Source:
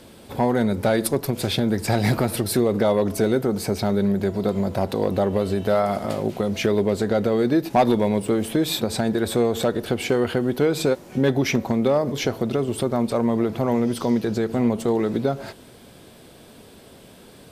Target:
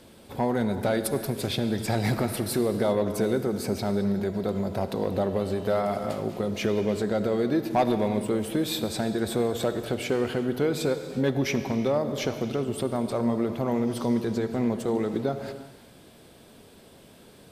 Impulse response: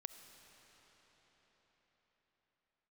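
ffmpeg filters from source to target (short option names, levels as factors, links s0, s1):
-filter_complex "[1:a]atrim=start_sample=2205,afade=t=out:st=0.45:d=0.01,atrim=end_sample=20286[s0];[0:a][s0]afir=irnorm=-1:irlink=0"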